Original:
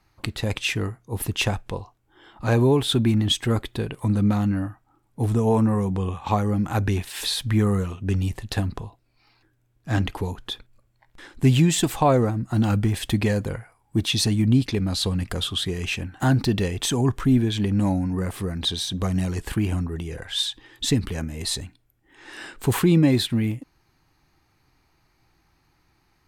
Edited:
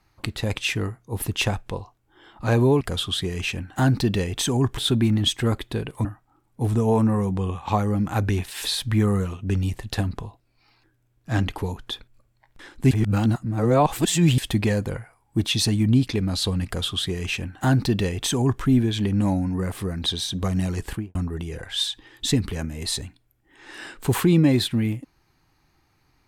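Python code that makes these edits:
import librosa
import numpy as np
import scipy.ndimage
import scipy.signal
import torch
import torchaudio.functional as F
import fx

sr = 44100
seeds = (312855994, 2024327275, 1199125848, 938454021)

y = fx.studio_fade_out(x, sr, start_s=19.44, length_s=0.3)
y = fx.edit(y, sr, fx.cut(start_s=4.09, length_s=0.55),
    fx.reverse_span(start_s=11.5, length_s=1.47),
    fx.duplicate(start_s=15.25, length_s=1.96, to_s=2.81), tone=tone)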